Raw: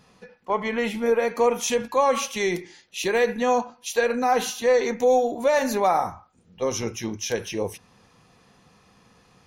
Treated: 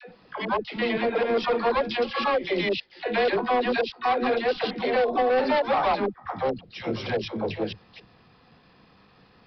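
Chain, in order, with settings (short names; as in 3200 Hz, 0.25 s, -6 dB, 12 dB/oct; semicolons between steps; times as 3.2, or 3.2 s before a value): slices in reverse order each 0.112 s, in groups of 3; dispersion lows, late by 97 ms, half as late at 380 Hz; vibrato 0.44 Hz 9.6 cents; overloaded stage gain 19.5 dB; harmoniser +7 st -8 dB; downsampling 11025 Hz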